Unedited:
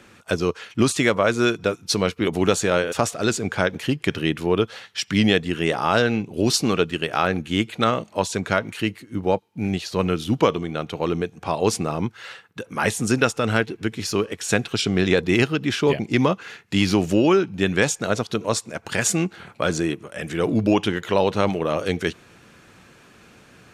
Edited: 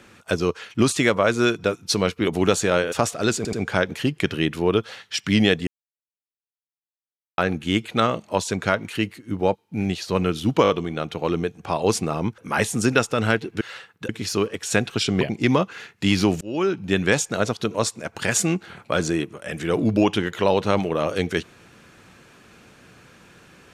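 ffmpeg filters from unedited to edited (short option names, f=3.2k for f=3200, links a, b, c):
-filter_complex "[0:a]asplit=13[a][b][c][d][e][f][g][h][i][j][k][l][m];[a]atrim=end=3.452[n];[b]atrim=start=3.368:end=3.452[o];[c]atrim=start=3.368:end=5.51,asetpts=PTS-STARTPTS,afade=t=out:st=2.138:d=0.004:c=hsin[p];[d]atrim=start=5.51:end=7.22,asetpts=PTS-STARTPTS,volume=0[q];[e]atrim=start=7.22:end=10.492,asetpts=PTS-STARTPTS,afade=t=in:d=0.004:c=hsin[r];[f]atrim=start=10.468:end=10.492[s];[g]atrim=start=10.468:end=10.492[t];[h]atrim=start=10.468:end=12.162[u];[i]atrim=start=12.638:end=13.872[v];[j]atrim=start=12.158:end=12.642[w];[k]atrim=start=13.868:end=14.992[x];[l]atrim=start=15.908:end=17.11,asetpts=PTS-STARTPTS,afade=t=out:st=1.198:d=0.004:c=hsin[y];[m]atrim=start=17.11,asetpts=PTS-STARTPTS,afade=t=in:d=0.4[z];[n][o]acrossfade=d=0.004:c1=hsin:c2=hsin[aa];[p][q][r]concat=n=3:v=0:a=1[ab];[aa][ab]acrossfade=d=0.004:c1=hsin:c2=hsin[ac];[ac][s]acrossfade=d=0.004:c1=hsin:c2=hsin[ad];[ad][t]acrossfade=d=0.004:c1=hsin:c2=hsin[ae];[ae][u]acrossfade=d=0.004:c1=hsin:c2=hsin[af];[af][v]acrossfade=d=0.004:c1=hsin:c2=hsin[ag];[ag][w]acrossfade=d=0.004:c1=hsin:c2=hsin[ah];[ah][x]acrossfade=d=0.004:c1=hsin:c2=hsin[ai];[y][z]concat=n=2:v=0:a=1[aj];[ai][aj]acrossfade=d=0.004:c1=hsin:c2=hsin"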